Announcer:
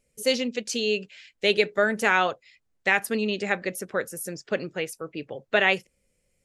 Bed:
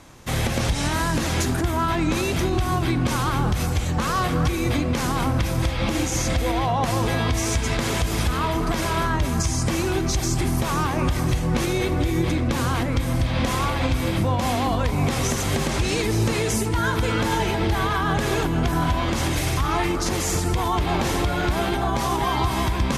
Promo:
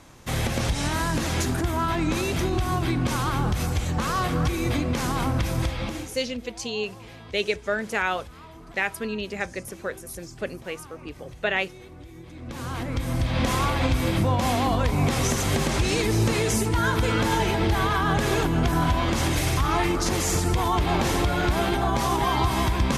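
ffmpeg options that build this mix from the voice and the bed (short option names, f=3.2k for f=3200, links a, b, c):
-filter_complex "[0:a]adelay=5900,volume=-4dB[a];[1:a]volume=19dB,afade=t=out:st=5.6:d=0.59:silence=0.105925,afade=t=in:st=12.32:d=1.18:silence=0.0841395[b];[a][b]amix=inputs=2:normalize=0"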